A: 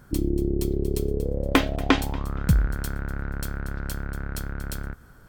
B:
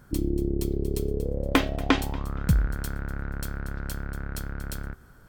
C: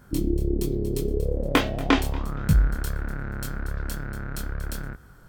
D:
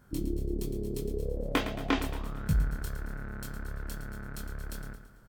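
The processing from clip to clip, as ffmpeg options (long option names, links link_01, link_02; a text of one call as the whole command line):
ffmpeg -i in.wav -af "bandreject=frequency=378.9:width_type=h:width=4,bandreject=frequency=757.8:width_type=h:width=4,bandreject=frequency=1136.7:width_type=h:width=4,bandreject=frequency=1515.6:width_type=h:width=4,bandreject=frequency=1894.5:width_type=h:width=4,bandreject=frequency=2273.4:width_type=h:width=4,bandreject=frequency=2652.3:width_type=h:width=4,bandreject=frequency=3031.2:width_type=h:width=4,bandreject=frequency=3410.1:width_type=h:width=4,bandreject=frequency=3789:width_type=h:width=4,bandreject=frequency=4167.9:width_type=h:width=4,bandreject=frequency=4546.8:width_type=h:width=4,bandreject=frequency=4925.7:width_type=h:width=4,bandreject=frequency=5304.6:width_type=h:width=4,volume=-2dB" out.wav
ffmpeg -i in.wav -af "flanger=delay=19.5:depth=7.7:speed=1.2,volume=5dB" out.wav
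ffmpeg -i in.wav -af "aecho=1:1:111|222|333|444|555:0.282|0.135|0.0649|0.0312|0.015,volume=-8dB" out.wav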